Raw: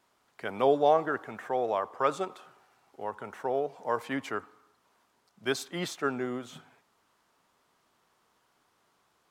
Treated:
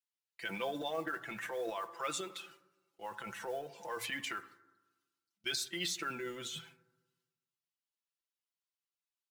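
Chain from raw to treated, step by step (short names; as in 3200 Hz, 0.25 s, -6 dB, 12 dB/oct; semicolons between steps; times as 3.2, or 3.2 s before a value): per-bin expansion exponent 1.5; weighting filter D; gate with hold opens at -56 dBFS; high shelf 6100 Hz +11 dB; notches 60/120 Hz; transient shaper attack -5 dB, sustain +10 dB; compressor 3:1, threshold -46 dBFS, peak gain reduction 19 dB; comb 5.9 ms, depth 69%; modulation noise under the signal 25 dB; reverb RT60 1.2 s, pre-delay 4 ms, DRR 13.5 dB; gain +4 dB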